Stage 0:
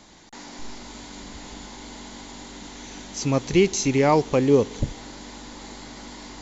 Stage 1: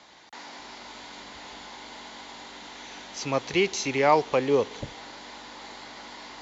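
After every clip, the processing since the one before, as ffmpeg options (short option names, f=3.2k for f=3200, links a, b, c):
-filter_complex "[0:a]highpass=60,acrossover=split=490 5400:gain=0.224 1 0.0891[a][b][c];[a][b][c]amix=inputs=3:normalize=0,volume=1.5dB"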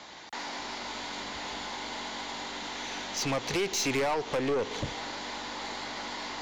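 -af "acompressor=threshold=-24dB:ratio=12,aeval=exprs='(tanh(35.5*val(0)+0.15)-tanh(0.15))/35.5':c=same,volume=6dB"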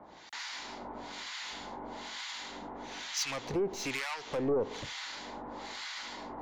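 -filter_complex "[0:a]acrossover=split=1100[a][b];[a]aeval=exprs='val(0)*(1-1/2+1/2*cos(2*PI*1.1*n/s))':c=same[c];[b]aeval=exprs='val(0)*(1-1/2-1/2*cos(2*PI*1.1*n/s))':c=same[d];[c][d]amix=inputs=2:normalize=0"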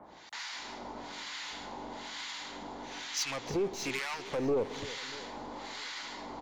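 -af "aecho=1:1:317|634|951|1268|1585|1902:0.158|0.0919|0.0533|0.0309|0.0179|0.0104"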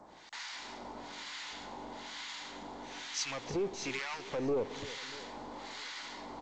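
-af "volume=-2.5dB" -ar 16000 -c:a g722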